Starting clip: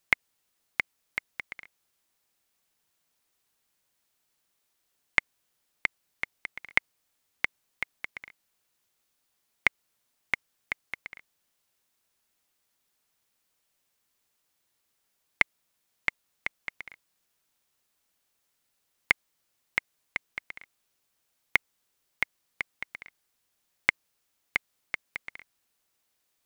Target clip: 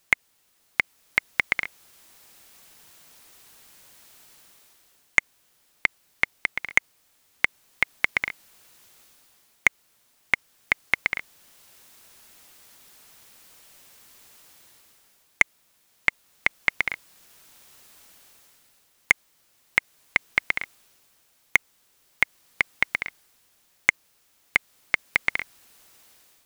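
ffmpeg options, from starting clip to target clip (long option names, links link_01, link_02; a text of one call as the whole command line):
ffmpeg -i in.wav -af "dynaudnorm=framelen=300:gausssize=5:maxgain=13.5dB,asoftclip=type=hard:threshold=-5.5dB,alimiter=level_in=11dB:limit=-1dB:release=50:level=0:latency=1,volume=-1dB" out.wav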